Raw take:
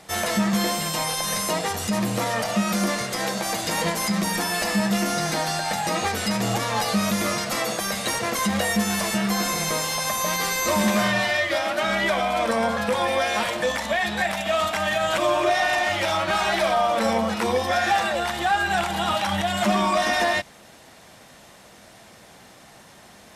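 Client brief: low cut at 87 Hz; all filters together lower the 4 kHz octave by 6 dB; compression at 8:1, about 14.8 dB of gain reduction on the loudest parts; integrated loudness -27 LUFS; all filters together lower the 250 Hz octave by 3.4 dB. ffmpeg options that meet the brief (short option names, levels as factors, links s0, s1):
-af "highpass=87,equalizer=f=250:t=o:g=-4.5,equalizer=f=4000:t=o:g=-8,acompressor=threshold=0.02:ratio=8,volume=2.82"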